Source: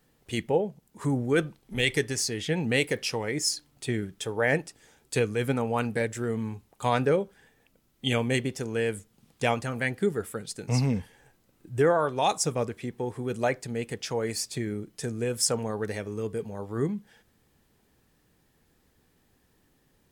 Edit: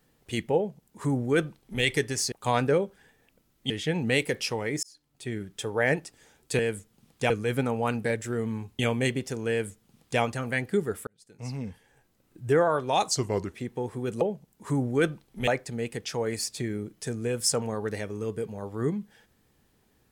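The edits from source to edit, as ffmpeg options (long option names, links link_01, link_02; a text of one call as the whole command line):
ffmpeg -i in.wav -filter_complex "[0:a]asplit=12[link_01][link_02][link_03][link_04][link_05][link_06][link_07][link_08][link_09][link_10][link_11][link_12];[link_01]atrim=end=2.322[link_13];[link_02]atrim=start=6.698:end=8.082[link_14];[link_03]atrim=start=2.318:end=3.45,asetpts=PTS-STARTPTS,afade=type=out:start_time=1.128:duration=0.004:curve=hsin[link_15];[link_04]atrim=start=3.45:end=5.212,asetpts=PTS-STARTPTS,afade=type=in:duration=0.8[link_16];[link_05]atrim=start=8.788:end=9.502[link_17];[link_06]atrim=start=5.208:end=6.702[link_18];[link_07]atrim=start=8.078:end=10.36,asetpts=PTS-STARTPTS,afade=type=out:start_time=2.278:duration=0.004:curve=hsin[link_19];[link_08]atrim=start=10.36:end=12.404,asetpts=PTS-STARTPTS,afade=type=in:duration=1.47[link_20];[link_09]atrim=start=12.4:end=12.76,asetpts=PTS-STARTPTS,asetrate=37485,aresample=44100[link_21];[link_10]atrim=start=12.756:end=13.442[link_22];[link_11]atrim=start=0.558:end=1.822[link_23];[link_12]atrim=start=13.438[link_24];[link_13][link_14]acrossfade=duration=0.004:curve1=hsin:curve2=hsin[link_25];[link_15][link_16]concat=n=2:v=0:a=1[link_26];[link_25][link_26]acrossfade=duration=0.004:curve1=hsin:curve2=hsin[link_27];[link_27][link_17]acrossfade=duration=0.004:curve1=hsin:curve2=hsin[link_28];[link_28][link_18]acrossfade=duration=0.004:curve1=hsin:curve2=hsin[link_29];[link_19][link_20]concat=n=2:v=0:a=1[link_30];[link_29][link_30]acrossfade=duration=0.004:curve1=hsin:curve2=hsin[link_31];[link_31][link_21]acrossfade=duration=0.004:curve1=hsin:curve2=hsin[link_32];[link_32][link_22]acrossfade=duration=0.004:curve1=hsin:curve2=hsin[link_33];[link_33][link_23]acrossfade=duration=0.004:curve1=hsin:curve2=hsin[link_34];[link_34][link_24]acrossfade=duration=0.004:curve1=hsin:curve2=hsin" out.wav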